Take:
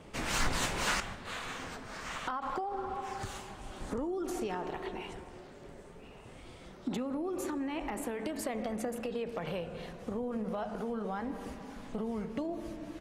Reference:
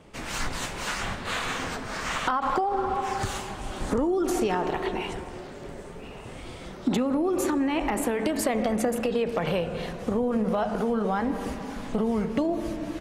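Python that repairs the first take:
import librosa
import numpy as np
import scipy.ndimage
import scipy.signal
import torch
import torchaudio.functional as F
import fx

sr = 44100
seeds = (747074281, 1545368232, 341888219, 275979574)

y = fx.fix_declip(x, sr, threshold_db=-22.0)
y = fx.fix_level(y, sr, at_s=1.0, step_db=10.5)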